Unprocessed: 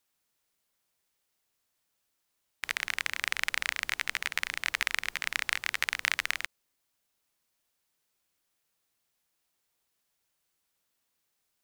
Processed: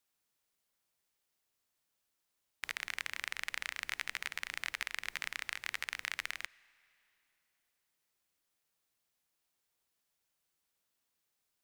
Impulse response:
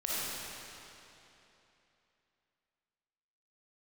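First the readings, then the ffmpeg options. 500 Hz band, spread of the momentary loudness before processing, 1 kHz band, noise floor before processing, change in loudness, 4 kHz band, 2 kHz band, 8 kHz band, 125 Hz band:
-8.0 dB, 4 LU, -8.5 dB, -79 dBFS, -8.5 dB, -8.5 dB, -8.5 dB, -8.5 dB, n/a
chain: -filter_complex "[0:a]alimiter=limit=-12dB:level=0:latency=1:release=236,asplit=2[a][b];[1:a]atrim=start_sample=2205[c];[b][c]afir=irnorm=-1:irlink=0,volume=-29.5dB[d];[a][d]amix=inputs=2:normalize=0,volume=-4.5dB"

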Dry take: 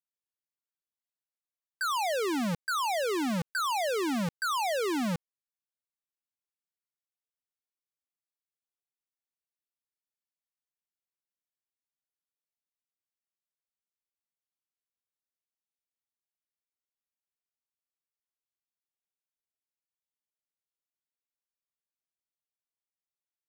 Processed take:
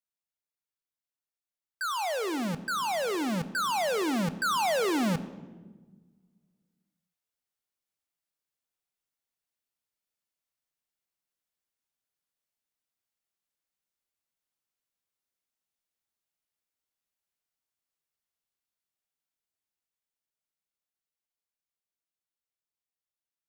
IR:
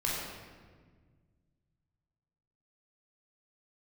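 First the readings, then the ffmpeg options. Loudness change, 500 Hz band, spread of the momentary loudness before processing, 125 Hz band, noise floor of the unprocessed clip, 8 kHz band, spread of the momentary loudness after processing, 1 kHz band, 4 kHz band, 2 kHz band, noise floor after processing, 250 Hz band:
+1.0 dB, +1.0 dB, 3 LU, +1.5 dB, under -85 dBFS, +0.5 dB, 7 LU, +1.0 dB, +1.0 dB, +1.0 dB, under -85 dBFS, +1.0 dB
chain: -filter_complex "[0:a]dynaudnorm=f=400:g=21:m=6.5dB,asplit=2[a][b];[1:a]atrim=start_sample=2205,asetrate=57330,aresample=44100[c];[b][c]afir=irnorm=-1:irlink=0,volume=-16dB[d];[a][d]amix=inputs=2:normalize=0,volume=-3dB"

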